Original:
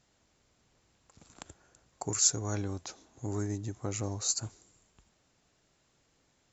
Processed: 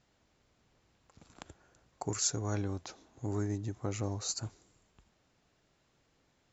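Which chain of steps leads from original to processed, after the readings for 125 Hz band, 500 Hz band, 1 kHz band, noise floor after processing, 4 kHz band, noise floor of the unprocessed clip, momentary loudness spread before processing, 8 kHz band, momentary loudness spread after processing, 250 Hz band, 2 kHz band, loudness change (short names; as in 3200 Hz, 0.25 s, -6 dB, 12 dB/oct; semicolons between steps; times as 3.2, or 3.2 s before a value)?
0.0 dB, 0.0 dB, -0.5 dB, -73 dBFS, -3.5 dB, -72 dBFS, 20 LU, n/a, 22 LU, 0.0 dB, -1.0 dB, -4.0 dB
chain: air absorption 85 m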